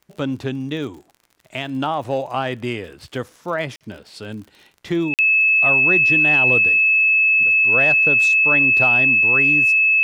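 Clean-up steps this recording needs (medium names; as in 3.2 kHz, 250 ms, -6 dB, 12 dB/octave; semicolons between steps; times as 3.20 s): de-click; band-stop 2.6 kHz, Q 30; interpolate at 3.76/5.14 s, 48 ms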